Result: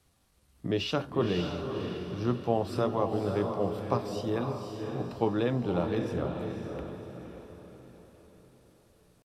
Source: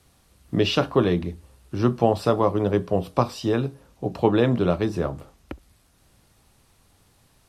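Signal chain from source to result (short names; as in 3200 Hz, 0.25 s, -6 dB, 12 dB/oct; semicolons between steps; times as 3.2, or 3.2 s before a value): tempo 0.81×; diffused feedback echo 0.548 s, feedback 44%, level -5 dB; gain -9 dB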